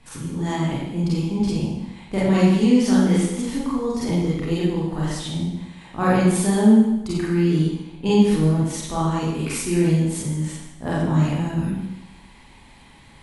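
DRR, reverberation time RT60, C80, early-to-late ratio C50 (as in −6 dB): −7.5 dB, 0.95 s, 1.5 dB, 0.0 dB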